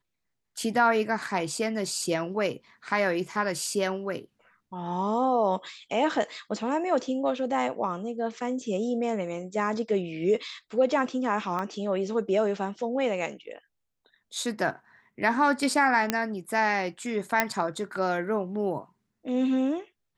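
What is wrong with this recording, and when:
0:11.59: drop-out 2 ms
0:16.10: click −8 dBFS
0:17.40: click −6 dBFS

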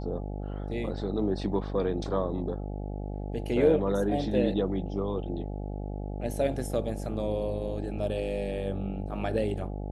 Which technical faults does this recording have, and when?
mains buzz 50 Hz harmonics 17 −35 dBFS

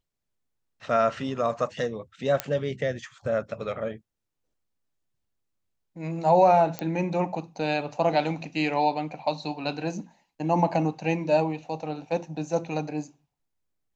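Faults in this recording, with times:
0:02.40: click −9 dBFS
0:06.79: click −15 dBFS

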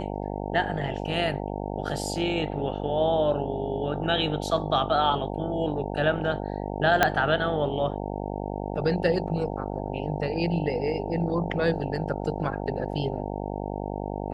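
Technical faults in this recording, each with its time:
mains buzz 50 Hz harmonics 18 −32 dBFS
0:07.03: click −4 dBFS

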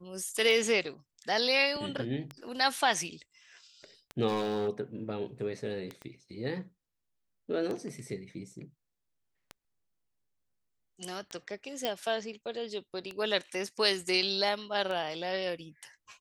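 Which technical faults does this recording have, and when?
scratch tick 33 1/3 rpm
0:04.27–0:04.69: clipping −26.5 dBFS
0:06.02: click −30 dBFS
0:11.85: click −16 dBFS

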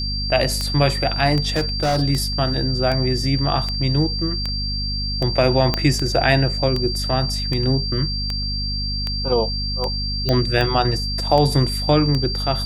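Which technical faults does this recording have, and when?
mains hum 50 Hz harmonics 5 −26 dBFS
scratch tick 78 rpm −11 dBFS
whistle 4,700 Hz −25 dBFS
0:01.56–0:02.03: clipping −15.5 dBFS
0:05.74: click −5 dBFS
0:10.29: click −8 dBFS

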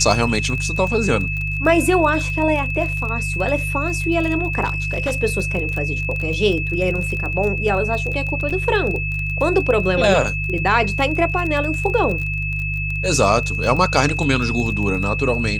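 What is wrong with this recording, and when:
surface crackle 21 per second −24 dBFS
mains hum 50 Hz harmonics 3 −25 dBFS
whistle 2,600 Hz −24 dBFS
0:04.64–0:05.16: clipping −16.5 dBFS
0:08.50–0:08.51: drop-out 5.2 ms

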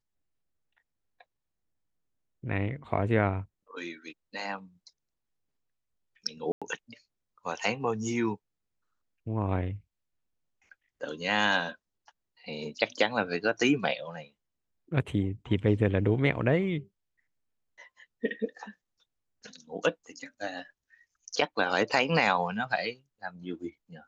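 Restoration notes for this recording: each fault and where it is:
0:06.52–0:06.62: drop-out 96 ms

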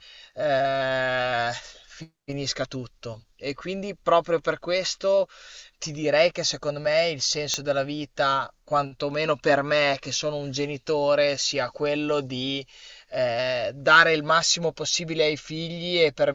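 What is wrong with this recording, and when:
0:07.54: click −10 dBFS

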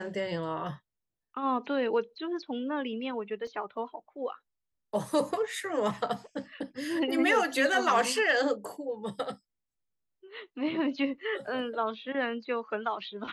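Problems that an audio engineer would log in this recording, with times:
0:03.47: drop-out 2.6 ms

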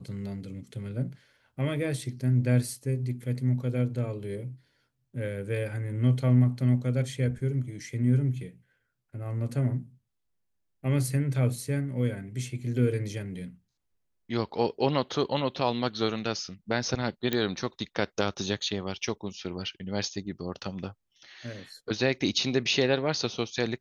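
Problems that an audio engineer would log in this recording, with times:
0:17.33: click −13 dBFS

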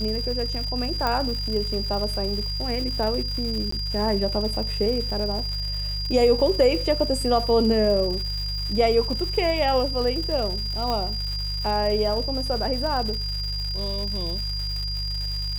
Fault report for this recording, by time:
surface crackle 320 per second −31 dBFS
mains hum 50 Hz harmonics 3 −30 dBFS
whistle 4,800 Hz −29 dBFS
0:01.07: click −11 dBFS
0:03.71–0:03.72: drop-out 14 ms
0:10.90: click −14 dBFS

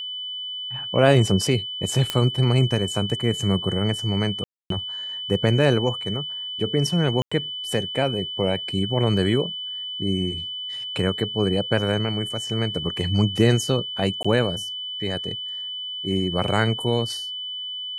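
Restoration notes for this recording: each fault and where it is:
whistle 3,000 Hz −29 dBFS
0:02.10: click −8 dBFS
0:04.44–0:04.70: drop-out 263 ms
0:07.22–0:07.32: drop-out 95 ms
0:14.23–0:14.24: drop-out 15 ms

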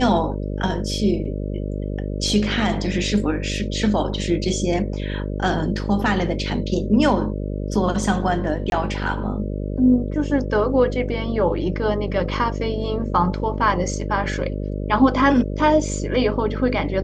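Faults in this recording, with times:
mains buzz 50 Hz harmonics 12 −26 dBFS
0:08.70–0:08.72: drop-out 21 ms

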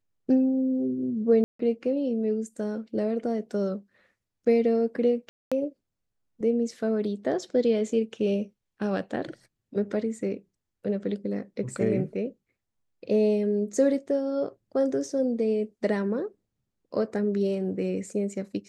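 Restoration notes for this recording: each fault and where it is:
0:01.44–0:01.59: drop-out 154 ms
0:05.29–0:05.52: drop-out 226 ms

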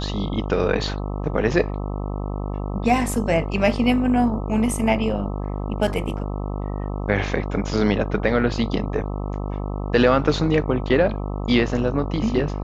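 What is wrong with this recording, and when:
mains buzz 50 Hz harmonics 26 −27 dBFS
0:05.87: drop-out 3.7 ms

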